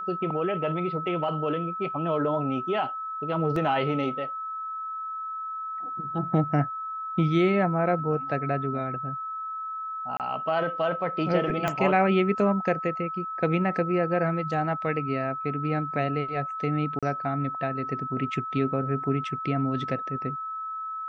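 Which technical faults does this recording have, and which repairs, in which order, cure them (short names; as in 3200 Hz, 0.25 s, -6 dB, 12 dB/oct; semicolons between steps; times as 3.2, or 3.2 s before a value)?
tone 1300 Hz -31 dBFS
3.56 gap 3 ms
10.17–10.2 gap 28 ms
11.68 pop -13 dBFS
16.99–17.03 gap 36 ms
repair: de-click; notch 1300 Hz, Q 30; interpolate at 3.56, 3 ms; interpolate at 10.17, 28 ms; interpolate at 16.99, 36 ms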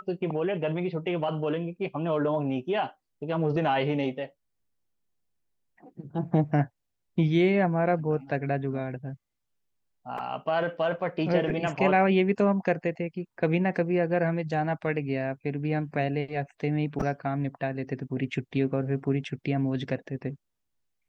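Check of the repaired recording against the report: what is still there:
11.68 pop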